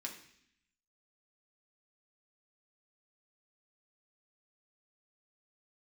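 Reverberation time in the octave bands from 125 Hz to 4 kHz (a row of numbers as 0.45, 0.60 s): 0.95, 0.95, 0.70, 0.65, 0.90, 0.85 s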